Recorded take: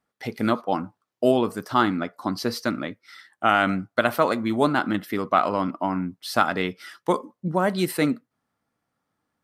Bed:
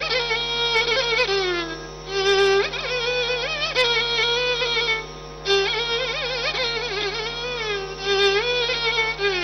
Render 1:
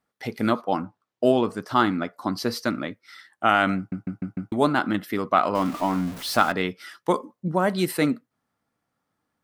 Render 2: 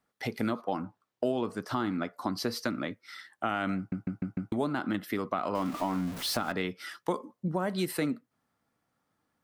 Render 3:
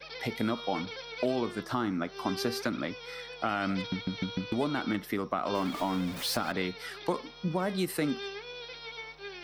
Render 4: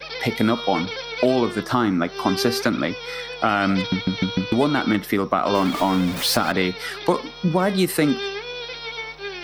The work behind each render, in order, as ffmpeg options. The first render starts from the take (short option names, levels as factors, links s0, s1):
-filter_complex "[0:a]asettb=1/sr,asplit=3[s0][s1][s2];[s0]atrim=end=0.844[s3];[s1]atrim=start=0.84:end=1.68,asetpts=PTS-STARTPTS,afade=t=in:d=0.004:c=qsin,afade=t=out:st=0.836:d=0.004:c=qsin,adynamicsmooth=sensitivity=4.5:basefreq=7900[s4];[s2]atrim=start=1.676[s5];[s3][s4]acrossfade=d=0.004:c1=hsin:c2=qsin[s6];[s6][s5]acrossfade=d=0.004:c1=qsin:c2=hsin,asettb=1/sr,asplit=3[s7][s8][s9];[s7]atrim=end=5.554[s10];[s8]atrim=start=5.55:end=6.52,asetpts=PTS-STARTPTS,afade=t=in:d=0.004:c=qsin,afade=t=out:st=0.966:d=0.004:c=qsin,aeval=exprs='val(0)+0.5*0.0266*sgn(val(0))':c=same[s11];[s9]atrim=start=6.516[s12];[s10][s11]acrossfade=d=0.004:c1=hsin:c2=qsin[s13];[s13][s12]acrossfade=d=0.004:c1=qsin:c2=hsin,asplit=6[s14][s15][s16][s17][s18][s19];[s14]atrim=end=3.922[s20];[s15]atrim=start=3.768:end=3.922[s21];[s16]atrim=start=3.768:end=3.922[s22];[s17]atrim=start=3.768:end=3.922[s23];[s18]atrim=start=3.768:end=3.922[s24];[s19]atrim=start=4.518[s25];[s20][s21]acrossfade=d=0.004:c1=hsin:c2=hsin[s26];[s26][s22]acrossfade=d=0.004:c1=hsin:c2=hsin[s27];[s27][s23]acrossfade=d=0.004:c1=hsin:c2=hsin[s28];[s28][s24]acrossfade=d=0.004:c1=hsin:c2=hsin[s29];[s29][s25]acrossfade=d=0.004:c1=hsin:c2=hsin"
-filter_complex "[0:a]acrossover=split=430[s0][s1];[s1]alimiter=limit=0.178:level=0:latency=1:release=143[s2];[s0][s2]amix=inputs=2:normalize=0,acompressor=threshold=0.0316:ratio=2.5"
-filter_complex "[1:a]volume=0.0891[s0];[0:a][s0]amix=inputs=2:normalize=0"
-af "volume=3.55"